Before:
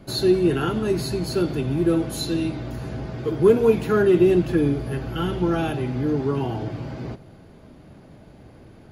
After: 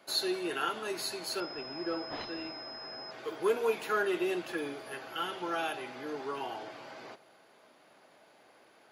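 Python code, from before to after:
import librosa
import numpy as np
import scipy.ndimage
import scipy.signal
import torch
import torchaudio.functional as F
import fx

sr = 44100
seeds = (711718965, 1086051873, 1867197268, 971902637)

y = scipy.signal.sosfilt(scipy.signal.butter(2, 750.0, 'highpass', fs=sr, output='sos'), x)
y = fx.pwm(y, sr, carrier_hz=5100.0, at=(1.4, 3.11))
y = y * librosa.db_to_amplitude(-3.0)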